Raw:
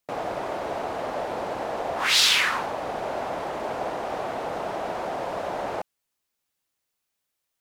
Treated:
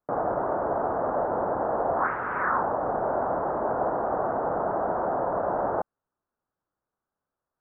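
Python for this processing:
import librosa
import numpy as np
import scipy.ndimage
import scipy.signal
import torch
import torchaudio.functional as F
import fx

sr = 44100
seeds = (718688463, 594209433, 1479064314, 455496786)

y = scipy.signal.sosfilt(scipy.signal.butter(8, 1500.0, 'lowpass', fs=sr, output='sos'), x)
y = y * librosa.db_to_amplitude(3.5)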